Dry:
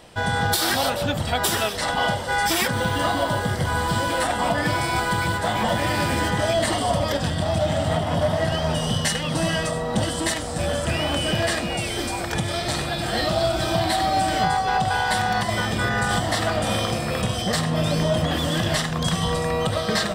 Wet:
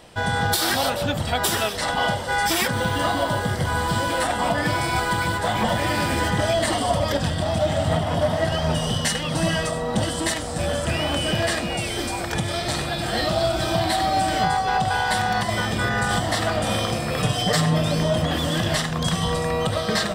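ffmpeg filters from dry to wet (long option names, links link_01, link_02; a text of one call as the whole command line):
ffmpeg -i in.wav -filter_complex "[0:a]asettb=1/sr,asplit=3[link_01][link_02][link_03];[link_01]atrim=end=4.864[link_04];[link_02]atrim=start=4.86:end=9.92,asetpts=PTS-STARTPTS,afade=type=in:duration=0.004:curve=qsin,afade=type=out:start_time=5.056:duration=0.004:curve=qsin,aphaser=in_gain=1:out_gain=1:delay=4.4:decay=0.22:speed=1.3:type=triangular[link_05];[link_03]atrim=start=9.916[link_06];[link_04][link_05]acrossfade=duration=0.004:curve1=hsin:curve2=qsin[link_07];[link_07][link_06]acrossfade=duration=0.004:curve1=qsin:curve2=hsin,asettb=1/sr,asplit=3[link_08][link_09][link_10];[link_08]atrim=end=17.174[link_11];[link_09]atrim=start=17.17:end=17.78,asetpts=PTS-STARTPTS,afade=type=in:duration=0.004:curve=qsin,afade=type=out:start_time=0.606:duration=0.004:curve=qsin,aecho=1:1:6.8:0.85,atrim=end_sample=26901[link_12];[link_10]atrim=start=17.776[link_13];[link_11][link_12]acrossfade=duration=0.004:curve1=hsin:curve2=qsin[link_14];[link_14][link_13]acrossfade=duration=0.004:curve1=qsin:curve2=hsin" out.wav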